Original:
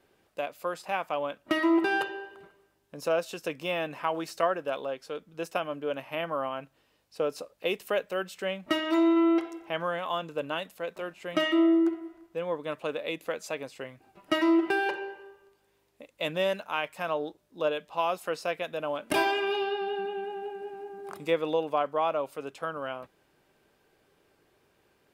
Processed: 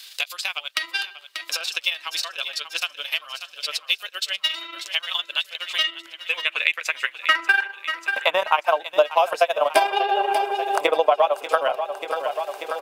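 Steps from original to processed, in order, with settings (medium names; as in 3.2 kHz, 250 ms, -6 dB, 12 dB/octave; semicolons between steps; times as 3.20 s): granular stretch 0.51×, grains 77 ms; in parallel at +3 dB: compression, threshold -32 dBFS, peak gain reduction 11.5 dB; on the sum: high-pass sweep 4 kHz -> 660 Hz, 5.63–8.95 s; transient shaper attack +4 dB, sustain -7 dB; on a send: feedback delay 588 ms, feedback 56%, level -15 dB; on the sum: three bands compressed up and down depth 70%; trim +5 dB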